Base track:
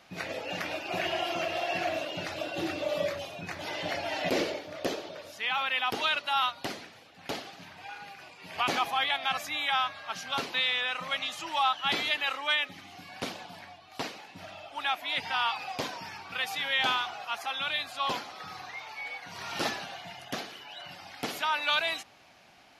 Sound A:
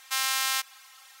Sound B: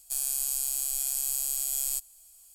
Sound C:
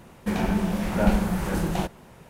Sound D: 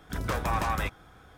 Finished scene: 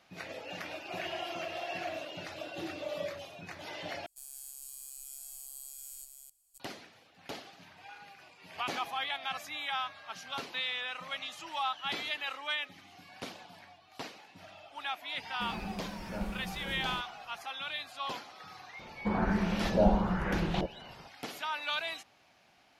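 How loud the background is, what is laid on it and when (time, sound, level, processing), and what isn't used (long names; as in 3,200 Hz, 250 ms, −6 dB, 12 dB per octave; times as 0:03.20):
base track −7 dB
0:04.06: overwrite with B −18 dB + delay that plays each chunk backwards 280 ms, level −5 dB
0:15.14: mix in C −16.5 dB
0:18.79: mix in C −6 dB + auto-filter low-pass saw up 1.1 Hz 500–4,200 Hz
not used: A, D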